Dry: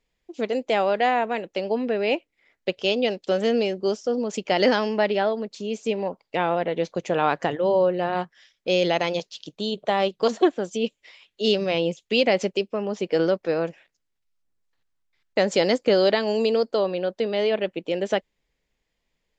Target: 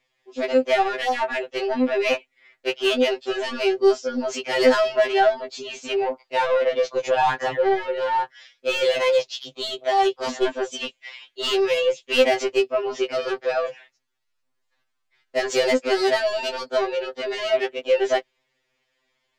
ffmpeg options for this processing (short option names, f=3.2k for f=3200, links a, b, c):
-filter_complex "[0:a]asplit=2[a][b];[b]highpass=f=720:p=1,volume=20dB,asoftclip=type=tanh:threshold=-6.5dB[c];[a][c]amix=inputs=2:normalize=0,lowpass=f=3.7k:p=1,volume=-6dB,afftfilt=real='re*2.45*eq(mod(b,6),0)':imag='im*2.45*eq(mod(b,6),0)':win_size=2048:overlap=0.75,volume=-2dB"